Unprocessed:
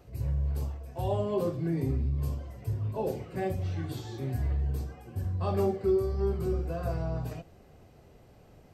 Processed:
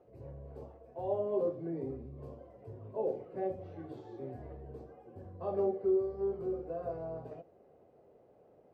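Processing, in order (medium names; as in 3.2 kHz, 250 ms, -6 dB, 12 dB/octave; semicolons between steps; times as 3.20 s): band-pass filter 510 Hz, Q 1.7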